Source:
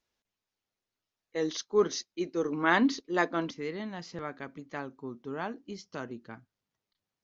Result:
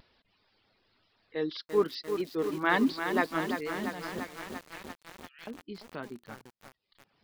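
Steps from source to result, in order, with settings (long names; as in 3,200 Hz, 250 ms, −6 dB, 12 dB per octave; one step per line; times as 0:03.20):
reverb reduction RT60 0.69 s
0:04.20–0:05.47: Butterworth high-pass 2,000 Hz 48 dB per octave
upward compression, threshold −49 dBFS
pitch vibrato 2 Hz 57 cents
downsampling to 11,025 Hz
feedback echo at a low word length 342 ms, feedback 80%, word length 7 bits, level −7 dB
level −1 dB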